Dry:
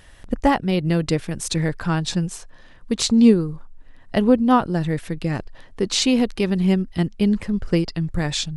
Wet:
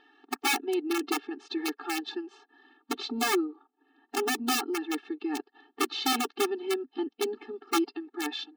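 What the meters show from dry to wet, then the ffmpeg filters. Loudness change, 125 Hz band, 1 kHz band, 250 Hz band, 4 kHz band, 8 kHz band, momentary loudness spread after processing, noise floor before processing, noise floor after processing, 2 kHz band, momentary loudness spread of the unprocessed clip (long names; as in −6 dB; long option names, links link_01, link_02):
−10.0 dB, below −40 dB, −6.0 dB, −13.5 dB, −6.0 dB, −6.5 dB, 10 LU, −46 dBFS, −78 dBFS, −2.5 dB, 12 LU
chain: -af "acontrast=48,highpass=180,equalizer=frequency=200:width_type=q:width=4:gain=-9,equalizer=frequency=290:width_type=q:width=4:gain=4,equalizer=frequency=420:width_type=q:width=4:gain=3,equalizer=frequency=960:width_type=q:width=4:gain=4,equalizer=frequency=2200:width_type=q:width=4:gain=-8,lowpass=frequency=3600:width=0.5412,lowpass=frequency=3600:width=1.3066,aeval=exprs='(mod(2.66*val(0)+1,2)-1)/2.66':channel_layout=same,afftfilt=real='re*eq(mod(floor(b*sr/1024/230),2),1)':imag='im*eq(mod(floor(b*sr/1024/230),2),1)':win_size=1024:overlap=0.75,volume=-9dB"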